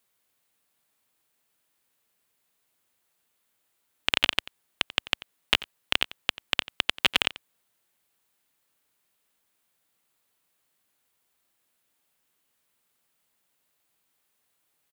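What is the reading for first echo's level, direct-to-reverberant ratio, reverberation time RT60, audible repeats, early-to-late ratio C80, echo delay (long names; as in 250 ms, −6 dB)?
−18.5 dB, no reverb audible, no reverb audible, 1, no reverb audible, 89 ms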